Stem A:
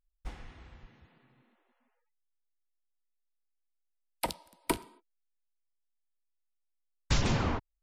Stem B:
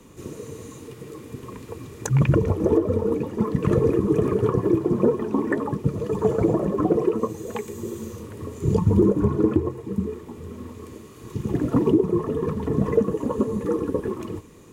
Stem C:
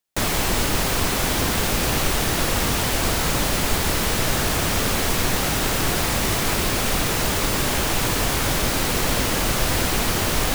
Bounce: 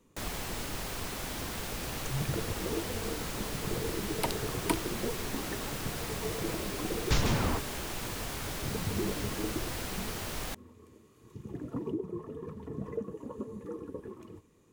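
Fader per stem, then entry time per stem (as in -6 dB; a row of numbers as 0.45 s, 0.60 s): 0.0 dB, -16.5 dB, -16.0 dB; 0.00 s, 0.00 s, 0.00 s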